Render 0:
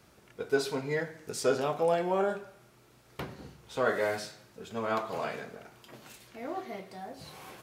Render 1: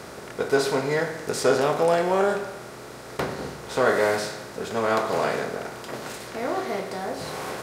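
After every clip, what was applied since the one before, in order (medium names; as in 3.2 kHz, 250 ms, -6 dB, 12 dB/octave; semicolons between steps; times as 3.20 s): spectral levelling over time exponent 0.6; trim +4.5 dB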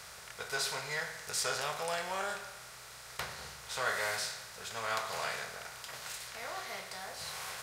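amplifier tone stack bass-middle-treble 10-0-10; trim -1.5 dB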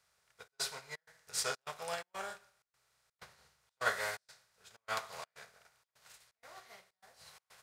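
trance gate "xxxx.xxx." 126 bpm -24 dB; upward expansion 2.5:1, over -49 dBFS; trim +3 dB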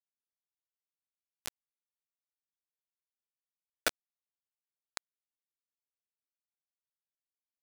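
bit crusher 4-bit; trim +2 dB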